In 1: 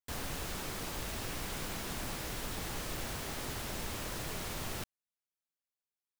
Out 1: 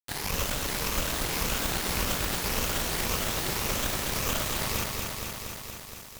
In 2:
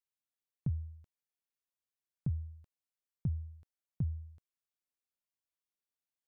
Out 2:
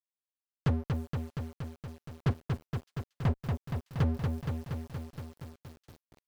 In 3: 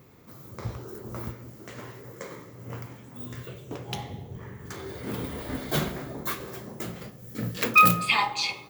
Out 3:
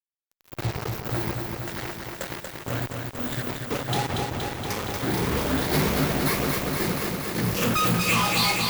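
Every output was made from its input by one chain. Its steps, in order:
rippled gain that drifts along the octave scale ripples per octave 0.83, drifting +1.8 Hz, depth 14 dB
parametric band 8,900 Hz −4 dB 0.59 octaves
fuzz pedal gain 42 dB, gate −35 dBFS
on a send: delay with a high-pass on its return 611 ms, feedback 75%, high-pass 5,600 Hz, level −15 dB
on the sum: feedback echo at a low word length 235 ms, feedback 80%, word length 7 bits, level −4 dB
level −8.5 dB

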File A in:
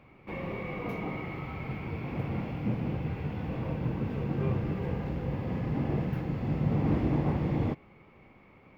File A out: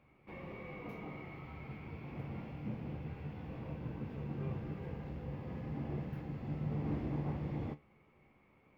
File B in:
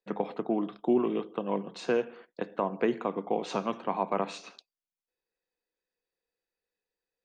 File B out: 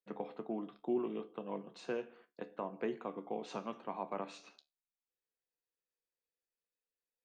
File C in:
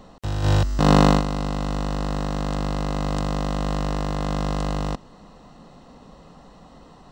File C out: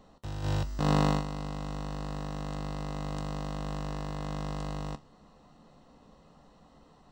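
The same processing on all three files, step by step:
tuned comb filter 73 Hz, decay 0.2 s, harmonics all, mix 60%
level −7 dB

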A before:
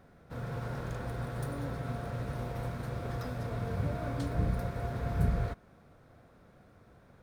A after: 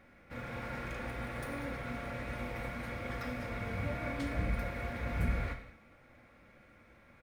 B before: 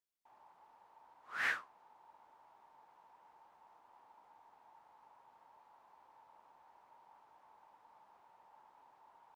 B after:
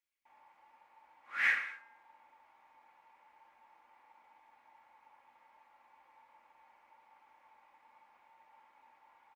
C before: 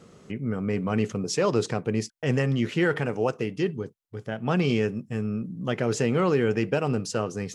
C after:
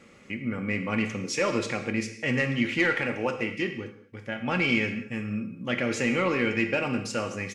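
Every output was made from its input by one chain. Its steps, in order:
parametric band 2,200 Hz +15 dB 0.67 octaves
comb filter 3.6 ms, depth 46%
soft clipping −9 dBFS
tuned comb filter 230 Hz, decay 1 s, mix 40%
reverb whose tail is shaped and stops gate 270 ms falling, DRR 5 dB

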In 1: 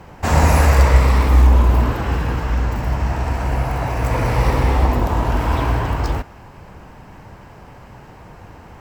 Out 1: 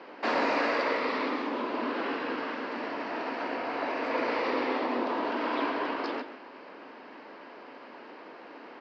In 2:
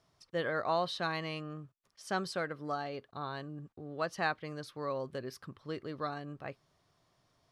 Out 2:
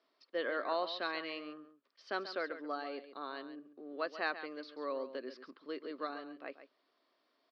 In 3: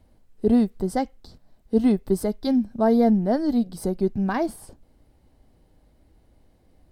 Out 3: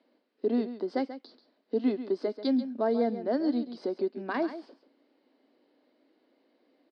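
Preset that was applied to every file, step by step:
in parallel at +3 dB: downward compressor, threshold −23 dBFS
on the sum: Chebyshev band-pass filter 260–4,700 Hz, order 4
parametric band 800 Hz −5.5 dB 0.38 octaves
single-tap delay 137 ms −12 dB
level −9 dB

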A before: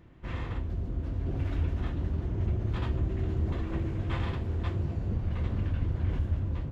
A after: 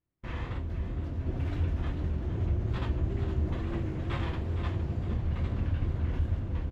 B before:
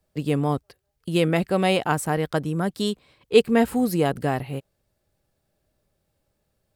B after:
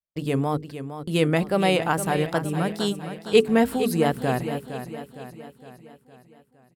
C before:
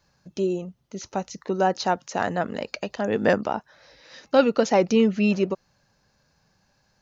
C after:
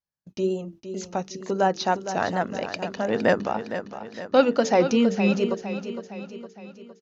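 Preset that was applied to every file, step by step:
mains-hum notches 50/100/150/200/250/300/350/400/450 Hz
noise gate −45 dBFS, range −31 dB
tape wow and flutter 72 cents
on a send: repeating echo 461 ms, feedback 51%, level −10.5 dB

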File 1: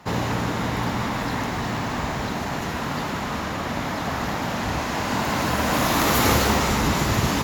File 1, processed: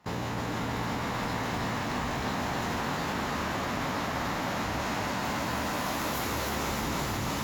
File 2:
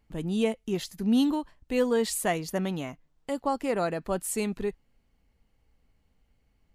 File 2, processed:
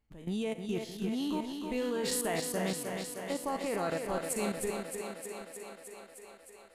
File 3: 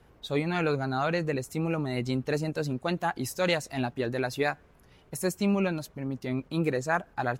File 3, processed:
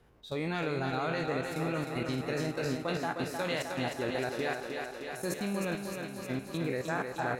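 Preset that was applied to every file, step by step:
peak hold with a decay on every bin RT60 0.51 s
output level in coarse steps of 15 dB
feedback echo with a high-pass in the loop 309 ms, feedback 75%, high-pass 170 Hz, level −5 dB
level −3 dB

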